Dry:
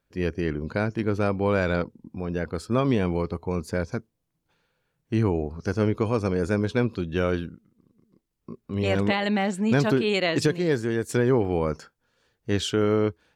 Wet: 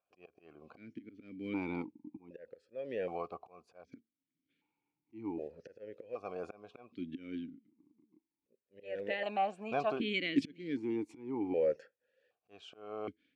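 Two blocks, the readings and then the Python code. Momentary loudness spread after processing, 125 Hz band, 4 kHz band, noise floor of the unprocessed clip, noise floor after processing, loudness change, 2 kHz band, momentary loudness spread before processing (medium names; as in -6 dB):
20 LU, -26.5 dB, -12.5 dB, -77 dBFS, under -85 dBFS, -12.5 dB, -13.0 dB, 9 LU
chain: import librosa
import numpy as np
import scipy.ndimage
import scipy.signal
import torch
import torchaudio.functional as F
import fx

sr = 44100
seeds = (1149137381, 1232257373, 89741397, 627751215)

y = fx.block_float(x, sr, bits=7)
y = fx.auto_swell(y, sr, attack_ms=451.0)
y = fx.vowel_held(y, sr, hz=1.3)
y = y * 10.0 ** (2.5 / 20.0)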